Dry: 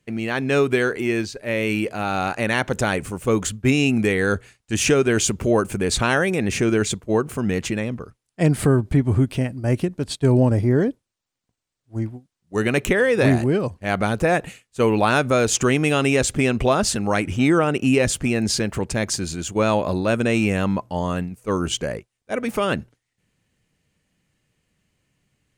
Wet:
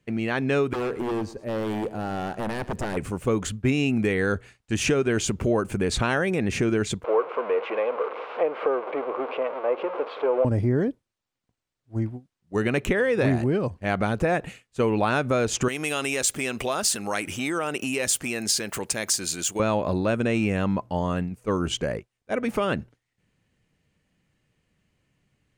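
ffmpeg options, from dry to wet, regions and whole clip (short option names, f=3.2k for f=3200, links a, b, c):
-filter_complex "[0:a]asettb=1/sr,asplit=3[a][b][c];[a]atrim=end=0.734[d];[b]atrim=start=0.73:end=2.97,asetpts=PTS-STARTPTS,afade=t=in:d=0.004:c=qsin,afade=t=out:st=2.236:d=0.004:c=qsin,equalizer=f=2.7k:t=o:w=2.8:g=-13.5,aeval=exprs='0.0794*(abs(mod(val(0)/0.0794+3,4)-2)-1)':c=same,aecho=1:1:111|222|333:0.133|0.0467|0.0163,atrim=end_sample=98784[e];[c]atrim=start=2.966[f];[d][e]acrossfade=d=0.004:c1=hsin:c2=qsin[g];[g][f]acrossfade=d=0.004:c1=qsin:c2=hsin,asettb=1/sr,asplit=3[h][i][j];[h]atrim=end=7.044[k];[i]atrim=start=7.04:end=10.45,asetpts=PTS-STARTPTS,afade=t=in:d=0.004:c=qsin,afade=t=out:st=3.406:d=0.004:c=qsin,aeval=exprs='val(0)+0.5*0.0841*sgn(val(0))':c=same,highpass=f=470:w=0.5412,highpass=f=470:w=1.3066,equalizer=f=490:t=q:w=4:g=10,equalizer=f=1.1k:t=q:w=4:g=6,equalizer=f=1.8k:t=q:w=4:g=-10,lowpass=f=2.3k:w=0.5412,lowpass=f=2.3k:w=1.3066[l];[j]atrim=start=10.446[m];[k][l]acrossfade=d=0.004:c1=hsin:c2=qsin[n];[n][m]acrossfade=d=0.004:c1=qsin:c2=hsin,asettb=1/sr,asplit=3[o][p][q];[o]atrim=end=15.684[r];[p]atrim=start=15.68:end=19.6,asetpts=PTS-STARTPTS,afade=t=in:d=0.004:c=qsin,afade=t=out:st=3.916:d=0.004:c=qsin,acompressor=threshold=-20dB:ratio=3:attack=3.2:release=140:knee=1:detection=peak,aemphasis=mode=production:type=riaa[s];[q]atrim=start=19.596[t];[r][s]acrossfade=d=0.004:c1=hsin:c2=qsin[u];[u][t]acrossfade=d=0.004:c1=qsin:c2=hsin,highshelf=f=4.9k:g=-8.5,acompressor=threshold=-22dB:ratio=2"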